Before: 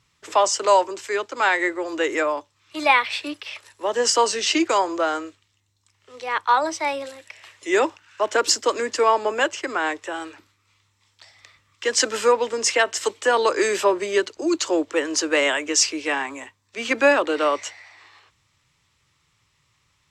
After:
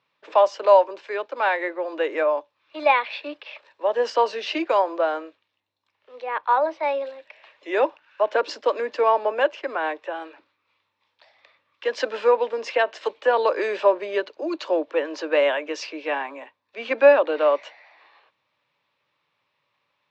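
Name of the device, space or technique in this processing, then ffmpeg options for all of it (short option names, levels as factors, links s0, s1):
phone earpiece: -filter_complex "[0:a]highpass=360,equalizer=f=370:t=q:w=4:g=-5,equalizer=f=570:t=q:w=4:g=6,equalizer=f=1300:t=q:w=4:g=-6,equalizer=f=2000:t=q:w=4:g=-7,equalizer=f=3100:t=q:w=4:g=-6,lowpass=f=3400:w=0.5412,lowpass=f=3400:w=1.3066,asettb=1/sr,asplit=3[s0][s1][s2];[s0]atrim=end=6.224[s3];[s1]atrim=start=6.22:end=6.83,asetpts=PTS-STARTPTS,afade=t=in:d=0.004:c=qsin,afade=t=out:st=0.606:d=0.004:c=qsin,acrossover=split=3100[s4][s5];[s5]acompressor=threshold=0.00126:ratio=4:attack=1:release=60[s6];[s4][s6]amix=inputs=2:normalize=0[s7];[s2]atrim=start=6.826[s8];[s3][s7]acrossfade=d=0.004:c1=hsin:c2=qsin[s9];[s9][s8]acrossfade=d=0.004:c1=qsin:c2=hsin"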